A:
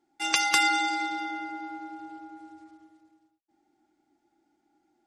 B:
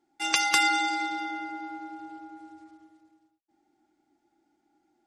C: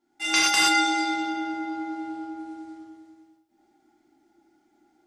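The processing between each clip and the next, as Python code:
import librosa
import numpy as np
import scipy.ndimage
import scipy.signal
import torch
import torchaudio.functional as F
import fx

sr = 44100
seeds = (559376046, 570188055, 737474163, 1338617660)

y1 = x
y2 = fx.rider(y1, sr, range_db=3, speed_s=2.0)
y2 = fx.rev_gated(y2, sr, seeds[0], gate_ms=150, shape='flat', drr_db=-6.5)
y2 = y2 * librosa.db_to_amplitude(-3.5)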